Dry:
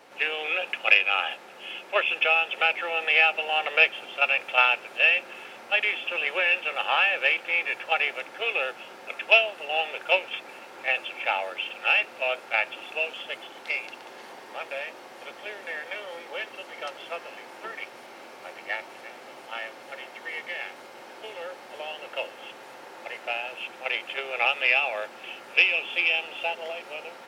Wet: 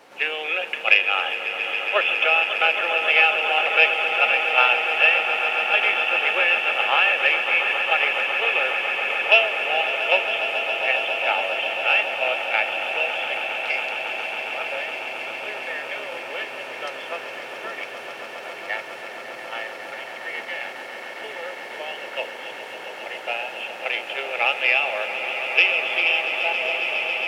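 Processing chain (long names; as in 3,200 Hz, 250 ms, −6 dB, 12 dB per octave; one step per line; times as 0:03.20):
echo that builds up and dies away 137 ms, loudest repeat 8, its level −12.5 dB
level +2.5 dB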